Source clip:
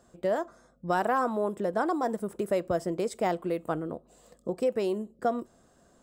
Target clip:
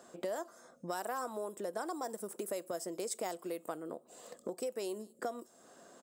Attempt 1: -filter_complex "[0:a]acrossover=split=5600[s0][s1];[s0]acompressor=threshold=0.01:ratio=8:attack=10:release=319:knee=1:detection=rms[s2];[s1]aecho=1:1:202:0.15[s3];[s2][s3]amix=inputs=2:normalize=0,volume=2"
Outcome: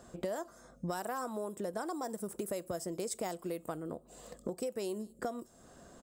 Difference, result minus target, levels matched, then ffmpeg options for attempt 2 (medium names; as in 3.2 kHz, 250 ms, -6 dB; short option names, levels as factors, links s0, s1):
250 Hz band +3.0 dB
-filter_complex "[0:a]acrossover=split=5600[s0][s1];[s0]acompressor=threshold=0.01:ratio=8:attack=10:release=319:knee=1:detection=rms,highpass=300[s2];[s1]aecho=1:1:202:0.15[s3];[s2][s3]amix=inputs=2:normalize=0,volume=2"